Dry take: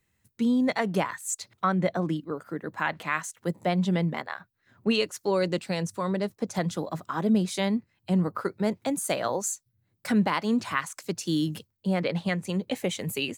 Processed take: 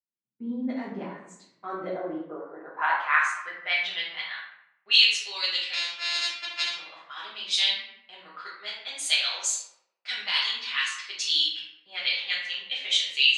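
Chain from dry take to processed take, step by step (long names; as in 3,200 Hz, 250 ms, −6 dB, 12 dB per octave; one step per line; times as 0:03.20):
0:05.73–0:06.76: samples sorted by size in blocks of 128 samples
meter weighting curve ITU-R 468
low-pass that shuts in the quiet parts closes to 790 Hz, open at −20.5 dBFS
noise gate −53 dBFS, range −17 dB
band-pass filter sweep 230 Hz → 3,400 Hz, 0:01.42–0:04.06
convolution reverb RT60 0.80 s, pre-delay 5 ms, DRR −8 dB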